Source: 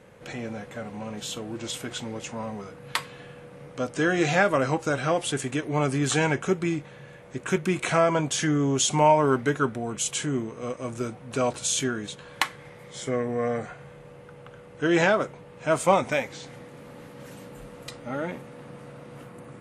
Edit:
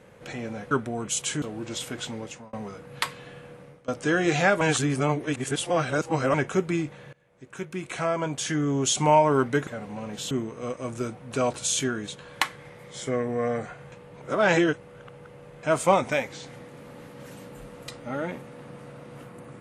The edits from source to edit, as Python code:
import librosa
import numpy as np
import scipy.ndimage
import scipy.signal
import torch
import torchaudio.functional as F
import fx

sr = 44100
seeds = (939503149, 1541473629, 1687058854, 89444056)

y = fx.edit(x, sr, fx.swap(start_s=0.71, length_s=0.64, other_s=9.6, other_length_s=0.71),
    fx.fade_out_span(start_s=1.98, length_s=0.48, curve='qsin'),
    fx.fade_out_to(start_s=3.49, length_s=0.32, floor_db=-24.0),
    fx.reverse_span(start_s=4.54, length_s=1.73),
    fx.fade_in_from(start_s=7.06, length_s=1.94, floor_db=-21.5),
    fx.reverse_span(start_s=13.92, length_s=1.71), tone=tone)